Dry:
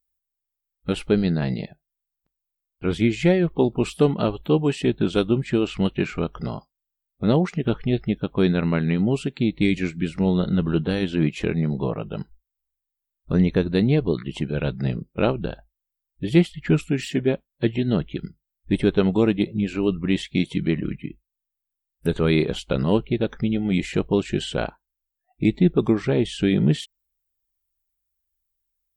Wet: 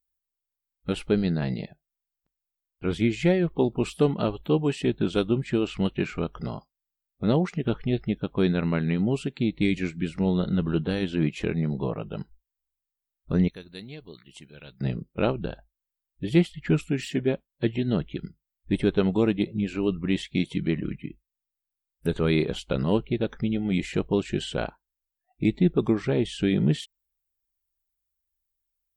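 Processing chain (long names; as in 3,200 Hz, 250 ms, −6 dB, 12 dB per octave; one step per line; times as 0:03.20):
0:13.48–0:14.81: first-order pre-emphasis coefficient 0.9
level −3.5 dB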